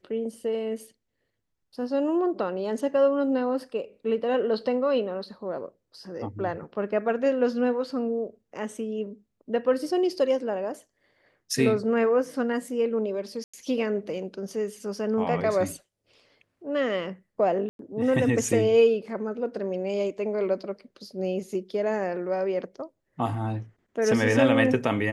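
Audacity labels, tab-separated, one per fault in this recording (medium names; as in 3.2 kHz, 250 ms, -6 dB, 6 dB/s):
13.440000	13.540000	dropout 95 ms
17.690000	17.790000	dropout 102 ms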